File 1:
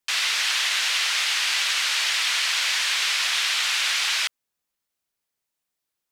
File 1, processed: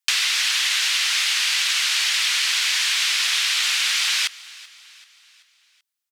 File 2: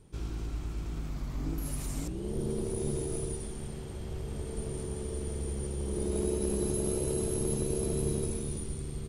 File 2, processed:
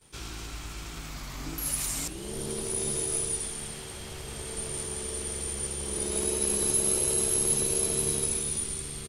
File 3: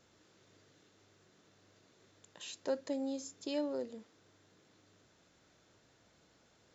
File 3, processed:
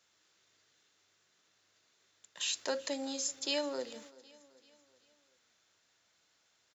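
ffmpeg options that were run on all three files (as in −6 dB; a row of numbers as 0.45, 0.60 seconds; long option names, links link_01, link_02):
-filter_complex "[0:a]agate=range=-13dB:threshold=-58dB:ratio=16:detection=peak,tiltshelf=frequency=780:gain=-9,bandreject=frequency=60:width_type=h:width=6,bandreject=frequency=120:width_type=h:width=6,bandreject=frequency=180:width_type=h:width=6,bandreject=frequency=240:width_type=h:width=6,bandreject=frequency=300:width_type=h:width=6,bandreject=frequency=360:width_type=h:width=6,bandreject=frequency=420:width_type=h:width=6,bandreject=frequency=480:width_type=h:width=6,bandreject=frequency=540:width_type=h:width=6,acrossover=split=170[link_01][link_02];[link_02]acompressor=threshold=-23dB:ratio=5[link_03];[link_01][link_03]amix=inputs=2:normalize=0,asplit=2[link_04][link_05];[link_05]aecho=0:1:384|768|1152|1536:0.0891|0.0446|0.0223|0.0111[link_06];[link_04][link_06]amix=inputs=2:normalize=0,volume=4dB"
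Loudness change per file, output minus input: +2.5, +7.0, +4.0 LU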